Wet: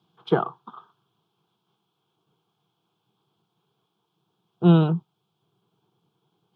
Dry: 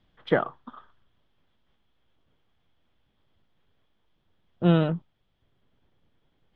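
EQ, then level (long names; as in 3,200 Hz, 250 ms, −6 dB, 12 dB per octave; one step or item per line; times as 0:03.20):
high-pass filter 120 Hz 24 dB per octave
phaser with its sweep stopped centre 380 Hz, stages 8
+5.5 dB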